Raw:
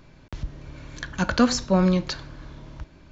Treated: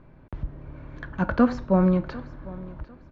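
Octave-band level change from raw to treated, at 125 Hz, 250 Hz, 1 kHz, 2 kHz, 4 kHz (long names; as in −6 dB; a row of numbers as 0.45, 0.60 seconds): 0.0 dB, 0.0 dB, −1.0 dB, −4.5 dB, below −15 dB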